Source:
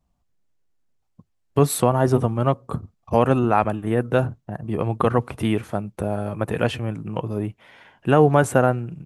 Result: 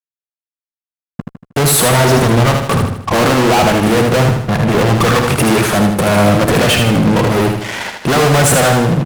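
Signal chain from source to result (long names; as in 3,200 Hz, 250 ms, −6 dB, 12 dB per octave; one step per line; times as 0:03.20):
high-pass filter 130 Hz 12 dB per octave
fuzz pedal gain 42 dB, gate −51 dBFS
on a send: repeating echo 78 ms, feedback 46%, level −5 dB
on the sum: level +2 dB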